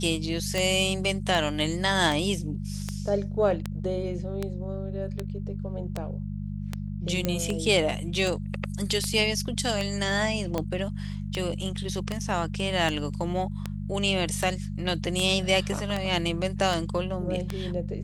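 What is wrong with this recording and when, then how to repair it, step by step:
mains hum 50 Hz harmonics 4 −33 dBFS
scratch tick 78 rpm
0:07.25: click −11 dBFS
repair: click removal
hum removal 50 Hz, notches 4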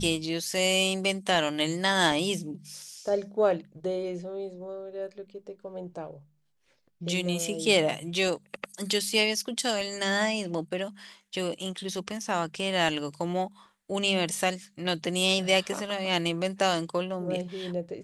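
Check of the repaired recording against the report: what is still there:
none of them is left

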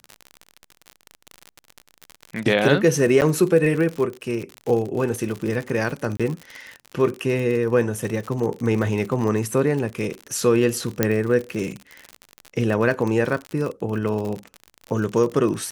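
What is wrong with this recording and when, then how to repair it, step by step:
surface crackle 56 per second −26 dBFS
0:03.21–0:03.22: drop-out 9.3 ms
0:06.17–0:06.20: drop-out 26 ms
0:11.03: click −3 dBFS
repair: click removal
repair the gap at 0:03.21, 9.3 ms
repair the gap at 0:06.17, 26 ms

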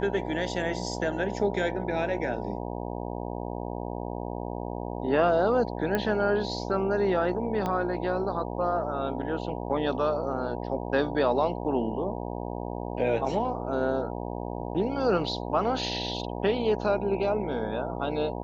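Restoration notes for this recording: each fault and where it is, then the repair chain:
mains buzz 60 Hz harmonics 16 −34 dBFS
0:05.95: click −14 dBFS
0:07.66: click −17 dBFS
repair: click removal
hum removal 60 Hz, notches 16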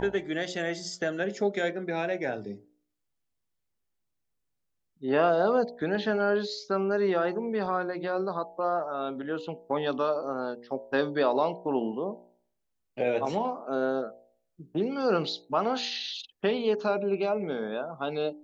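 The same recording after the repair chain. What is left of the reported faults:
0:07.66: click

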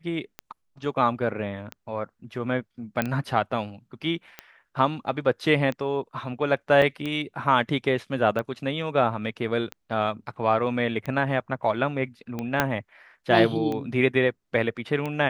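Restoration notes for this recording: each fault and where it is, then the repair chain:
scratch tick 45 rpm −18 dBFS
0:03.02: click −11 dBFS
0:06.82: drop-out 2.2 ms
0:12.60: click −6 dBFS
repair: click removal
repair the gap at 0:06.82, 2.2 ms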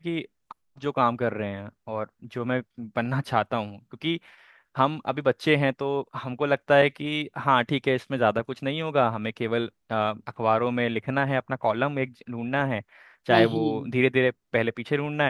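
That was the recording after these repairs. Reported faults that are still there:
0:12.60: click

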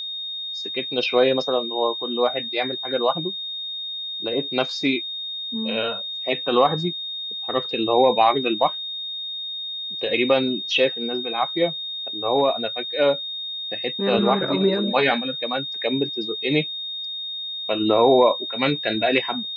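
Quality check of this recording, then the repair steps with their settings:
whistle 3,700 Hz −28 dBFS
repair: notch filter 3,700 Hz, Q 30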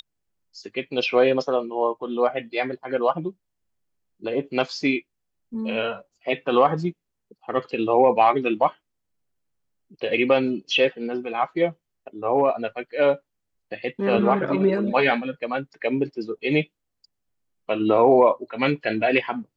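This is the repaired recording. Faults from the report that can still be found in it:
none of them is left

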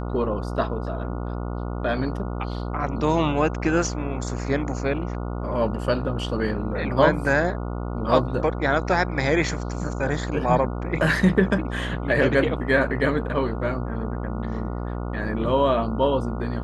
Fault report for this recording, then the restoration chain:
mains buzz 60 Hz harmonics 24 −29 dBFS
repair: hum removal 60 Hz, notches 24

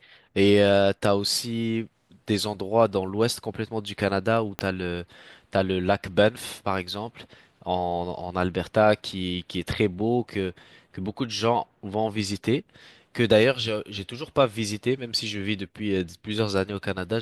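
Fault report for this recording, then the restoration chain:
0:04.59: click −12 dBFS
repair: click removal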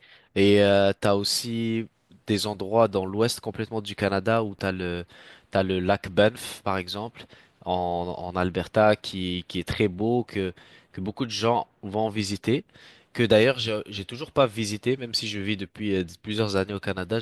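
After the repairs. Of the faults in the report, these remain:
0:04.59: click

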